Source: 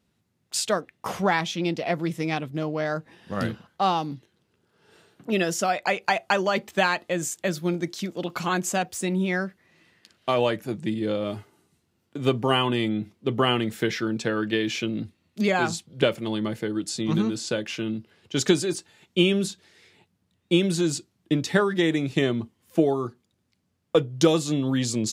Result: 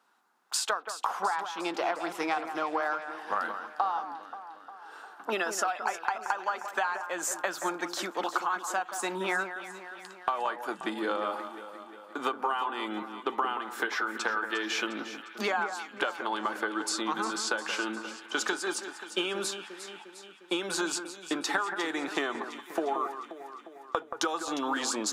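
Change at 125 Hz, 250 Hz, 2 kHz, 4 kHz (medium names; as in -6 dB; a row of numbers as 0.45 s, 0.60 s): under -25 dB, -12.0 dB, -2.0 dB, -5.5 dB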